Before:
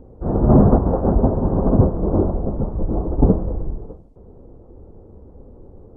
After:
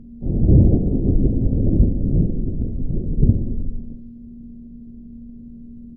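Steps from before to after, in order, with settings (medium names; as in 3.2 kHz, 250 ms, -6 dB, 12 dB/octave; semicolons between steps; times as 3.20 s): whistle 470 Hz -42 dBFS; Schroeder reverb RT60 1.4 s, combs from 32 ms, DRR 7.5 dB; pitch shift -12 st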